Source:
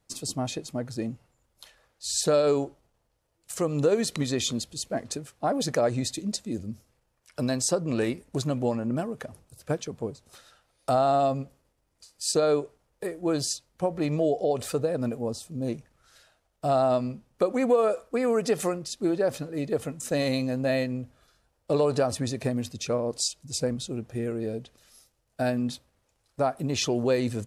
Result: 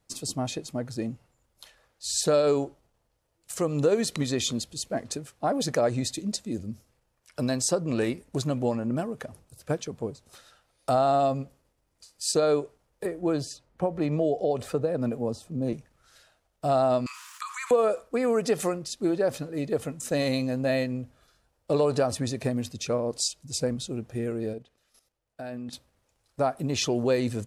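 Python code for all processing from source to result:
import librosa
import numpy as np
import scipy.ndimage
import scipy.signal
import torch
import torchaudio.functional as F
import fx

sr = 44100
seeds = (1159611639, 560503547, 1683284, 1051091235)

y = fx.chain(x, sr, fx.high_shelf(hz=2900.0, db=-9.0),
    fx.band_squash(depth_pct=40), at=(13.05, 15.73))
y = fx.chain(y, sr, fx.steep_highpass(hz=990.0, slope=96),
    fx.peak_eq(hz=7200.0, db=6.5, octaves=0.37),
    fx.env_flatten(amount_pct=70), at=(17.06, 17.71))
y = fx.chain(y, sr, fx.bass_treble(bass_db=-4, treble_db=-6),
    fx.level_steps(step_db=12), at=(24.53, 25.73))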